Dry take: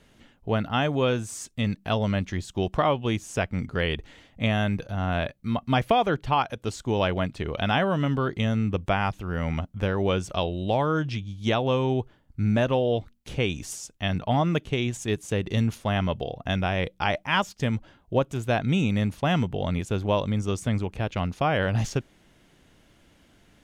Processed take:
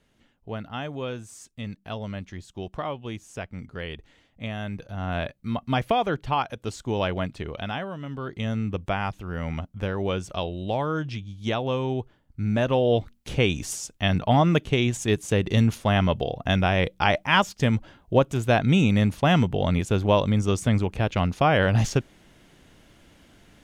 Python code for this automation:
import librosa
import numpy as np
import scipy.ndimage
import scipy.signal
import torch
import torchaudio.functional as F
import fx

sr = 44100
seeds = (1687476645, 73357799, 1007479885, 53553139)

y = fx.gain(x, sr, db=fx.line((4.56, -8.5), (5.18, -1.5), (7.35, -1.5), (8.0, -11.5), (8.5, -2.5), (12.45, -2.5), (12.95, 4.0)))